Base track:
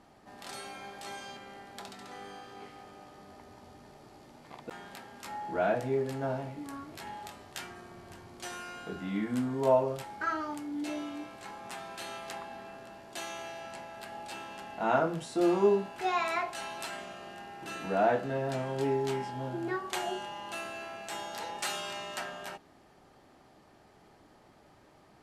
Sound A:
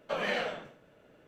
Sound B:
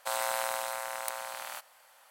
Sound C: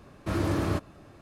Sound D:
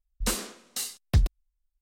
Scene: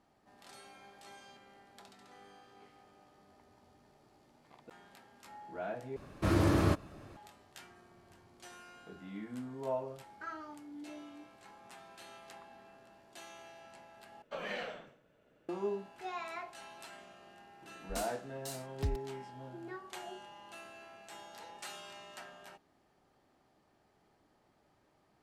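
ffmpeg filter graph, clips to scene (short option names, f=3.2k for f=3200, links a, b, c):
-filter_complex "[0:a]volume=-11.5dB,asplit=3[a][b][c];[a]atrim=end=5.964[d];[3:a]atrim=end=1.21,asetpts=PTS-STARTPTS,volume=-0.5dB[e];[b]atrim=start=7.166:end=14.224[f];[1:a]atrim=end=1.27,asetpts=PTS-STARTPTS,volume=-8.5dB[g];[c]atrim=start=15.486[h];[4:a]atrim=end=1.81,asetpts=PTS-STARTPTS,volume=-13.5dB,afade=t=in:d=0.004:c=hsin,afade=t=out:st=1.806:d=0.004:c=hsin,adelay=17690[i];[d][e]acrossfade=d=0.004:c1=hsin:c2=hsin[j];[j][f]acrossfade=d=0.004:c1=hsin:c2=hsin[k];[k][g]acrossfade=d=0.004:c1=hsin:c2=hsin[l];[l][h]acrossfade=d=0.004:c1=hsin:c2=hsin[m];[m][i]amix=inputs=2:normalize=0"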